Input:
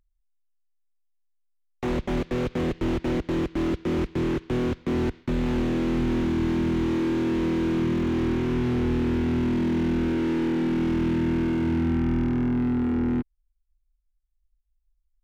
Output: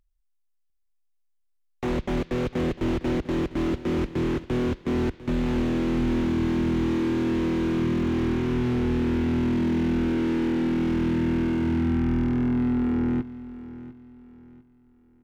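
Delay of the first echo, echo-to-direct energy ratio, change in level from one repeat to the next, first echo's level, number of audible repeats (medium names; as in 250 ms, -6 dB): 699 ms, -15.5 dB, -9.5 dB, -16.0 dB, 3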